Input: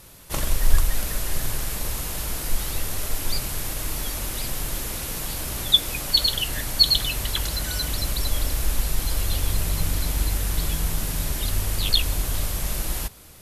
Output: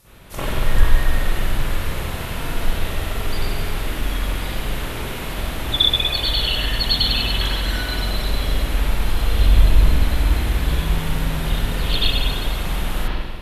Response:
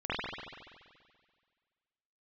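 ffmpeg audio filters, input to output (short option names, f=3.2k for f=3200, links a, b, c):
-filter_complex "[0:a]asettb=1/sr,asplit=3[a][b][c];[a]atrim=end=9.334[d];[b]atrim=start=9.33:end=9.82,asetpts=PTS-STARTPTS,afade=t=in:d=0.004:c=qsin,afade=t=out:st=0.486:d=0.004:c=qsin,lowshelf=f=130:g=8.5[e];[c]atrim=start=9.816[f];[d][e]acrossfade=d=0.004:c1=hsin:c2=qsin[g];[g][f]acrossfade=d=0.004:c1=qsin:c2=hsin[h];[1:a]atrim=start_sample=2205[i];[h][i]afir=irnorm=-1:irlink=0,volume=-2.5dB"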